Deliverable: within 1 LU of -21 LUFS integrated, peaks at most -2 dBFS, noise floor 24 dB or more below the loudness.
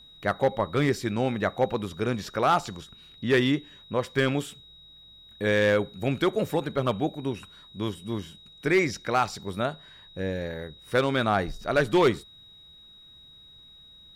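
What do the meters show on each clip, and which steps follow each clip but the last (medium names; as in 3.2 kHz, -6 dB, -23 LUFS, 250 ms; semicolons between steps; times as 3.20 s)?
clipped samples 0.4%; clipping level -14.5 dBFS; steady tone 3.8 kHz; tone level -49 dBFS; loudness -27.0 LUFS; peak level -14.5 dBFS; loudness target -21.0 LUFS
-> clip repair -14.5 dBFS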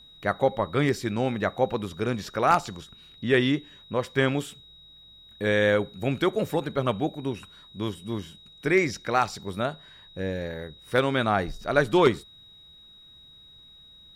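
clipped samples 0.0%; steady tone 3.8 kHz; tone level -49 dBFS
-> band-stop 3.8 kHz, Q 30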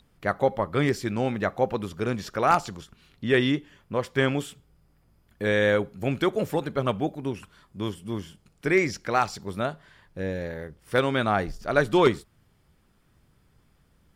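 steady tone not found; loudness -26.5 LUFS; peak level -6.0 dBFS; loudness target -21.0 LUFS
-> trim +5.5 dB; peak limiter -2 dBFS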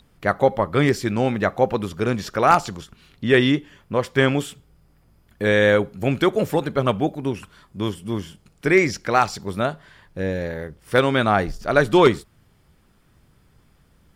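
loudness -21.0 LUFS; peak level -2.0 dBFS; noise floor -59 dBFS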